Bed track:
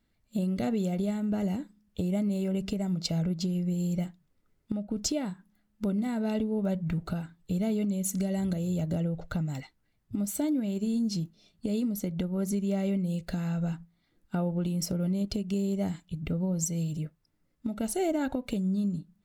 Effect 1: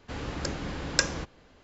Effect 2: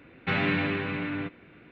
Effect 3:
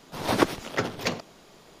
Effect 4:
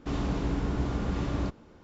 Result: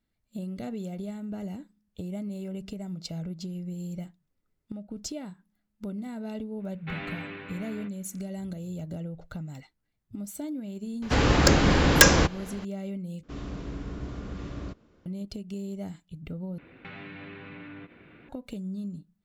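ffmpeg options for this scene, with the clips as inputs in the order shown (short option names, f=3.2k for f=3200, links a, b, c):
-filter_complex "[2:a]asplit=2[a][b];[0:a]volume=-6.5dB[c];[a]lowshelf=f=200:g=-5.5[d];[1:a]aeval=exprs='0.75*sin(PI/2*4.47*val(0)/0.75)':c=same[e];[4:a]equalizer=f=850:t=o:w=0.27:g=-8.5[f];[b]acompressor=threshold=-41dB:ratio=6:attack=3.2:release=140:knee=1:detection=peak[g];[c]asplit=3[h][i][j];[h]atrim=end=13.234[k];[f]atrim=end=1.83,asetpts=PTS-STARTPTS,volume=-7dB[l];[i]atrim=start=15.056:end=16.584[m];[g]atrim=end=1.71[n];[j]atrim=start=18.286[o];[d]atrim=end=1.71,asetpts=PTS-STARTPTS,volume=-10dB,afade=t=in:d=0.004:c=hsin,afade=t=out:st=1.706:d=0.004:c=hsin,adelay=6600[p];[e]atrim=end=1.63,asetpts=PTS-STARTPTS,volume=-2.5dB,afade=t=in:d=0.004:c=hsin,afade=t=out:st=1.626:d=0.004:c=hsin,adelay=11020[q];[k][l]acrossfade=d=0.004:c1=hsin:c2=hsin[r];[r][m]acrossfade=d=0.004:c1=hsin:c2=hsin[s];[s][n]acrossfade=d=0.004:c1=hsin:c2=hsin[t];[t][o]acrossfade=d=0.004:c1=hsin:c2=hsin[u];[u][p][q]amix=inputs=3:normalize=0"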